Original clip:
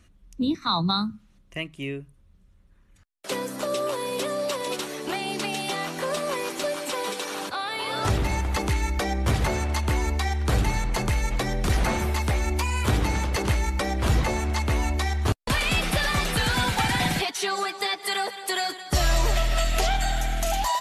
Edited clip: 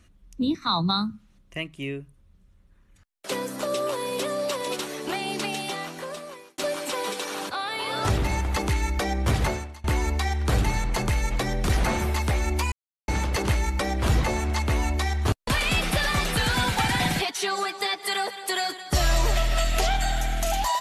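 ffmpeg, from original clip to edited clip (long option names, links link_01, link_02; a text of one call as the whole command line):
ffmpeg -i in.wav -filter_complex "[0:a]asplit=5[link_01][link_02][link_03][link_04][link_05];[link_01]atrim=end=6.58,asetpts=PTS-STARTPTS,afade=type=out:start_time=5.44:duration=1.14[link_06];[link_02]atrim=start=6.58:end=9.84,asetpts=PTS-STARTPTS,afade=type=in:duration=0.004:curve=hsin,afade=type=out:start_time=2.9:duration=0.36:curve=qua:silence=0.0794328[link_07];[link_03]atrim=start=9.84:end=12.72,asetpts=PTS-STARTPTS,afade=type=in:duration=0.004:curve=hsin:silence=0.0794328,afade=type=out:start_time=2.876:duration=0.004:curve=hsin[link_08];[link_04]atrim=start=12.72:end=13.08,asetpts=PTS-STARTPTS,volume=0[link_09];[link_05]atrim=start=13.08,asetpts=PTS-STARTPTS,afade=type=in:duration=0.004:curve=hsin[link_10];[link_06][link_07][link_08][link_09][link_10]concat=n=5:v=0:a=1" out.wav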